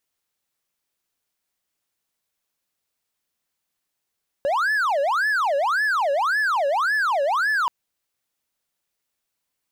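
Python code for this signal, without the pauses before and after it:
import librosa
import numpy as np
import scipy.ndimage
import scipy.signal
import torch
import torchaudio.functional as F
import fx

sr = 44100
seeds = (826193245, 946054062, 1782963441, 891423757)

y = fx.siren(sr, length_s=3.23, kind='wail', low_hz=551.0, high_hz=1740.0, per_s=1.8, wave='triangle', level_db=-16.5)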